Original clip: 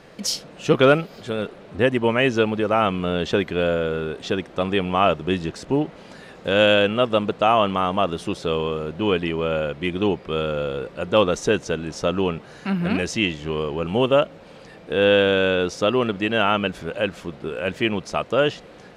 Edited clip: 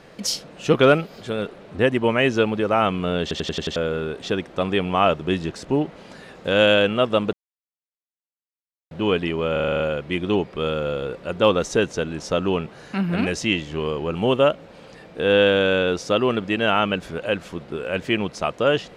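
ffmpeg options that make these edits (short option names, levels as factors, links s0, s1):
-filter_complex "[0:a]asplit=16[s0][s1][s2][s3][s4][s5][s6][s7][s8][s9][s10][s11][s12][s13][s14][s15];[s0]atrim=end=3.312[s16];[s1]atrim=start=3.218:end=3.312[s17];[s2]atrim=start=3.218:end=3.312[s18];[s3]atrim=start=3.218:end=3.312[s19];[s4]atrim=start=3.218:end=3.312[s20];[s5]atrim=start=3.218:end=3.312[s21];[s6]atrim=start=3.758:end=7.33,asetpts=PTS-STARTPTS,afade=t=out:st=3.568:d=0.004:c=hsin[s22];[s7]atrim=start=7.33:end=8.91,asetpts=PTS-STARTPTS,volume=0[s23];[s8]atrim=start=8.91:end=9.562,asetpts=PTS-STARTPTS,afade=t=in:d=0.004:c=hsin[s24];[s9]atrim=start=9.518:end=9.562[s25];[s10]atrim=start=9.518:end=9.562[s26];[s11]atrim=start=9.518:end=9.562[s27];[s12]atrim=start=9.518:end=9.562[s28];[s13]atrim=start=9.518:end=9.562[s29];[s14]atrim=start=9.518:end=9.562[s30];[s15]atrim=start=9.518[s31];[s16][s17]acrossfade=d=0.004:c1=hsin:c2=hsin[s32];[s32][s18]acrossfade=d=0.004:c1=hsin:c2=hsin[s33];[s33][s19]acrossfade=d=0.004:c1=hsin:c2=hsin[s34];[s34][s20]acrossfade=d=0.004:c1=hsin:c2=hsin[s35];[s35][s21]acrossfade=d=0.004:c1=hsin:c2=hsin[s36];[s22][s23][s24]concat=n=3:v=0:a=1[s37];[s36][s37]acrossfade=d=0.004:c1=hsin:c2=hsin[s38];[s38][s25]acrossfade=d=0.004:c1=hsin:c2=hsin[s39];[s39][s26]acrossfade=d=0.004:c1=hsin:c2=hsin[s40];[s40][s27]acrossfade=d=0.004:c1=hsin:c2=hsin[s41];[s41][s28]acrossfade=d=0.004:c1=hsin:c2=hsin[s42];[s42][s29]acrossfade=d=0.004:c1=hsin:c2=hsin[s43];[s43][s30]acrossfade=d=0.004:c1=hsin:c2=hsin[s44];[s44][s31]acrossfade=d=0.004:c1=hsin:c2=hsin"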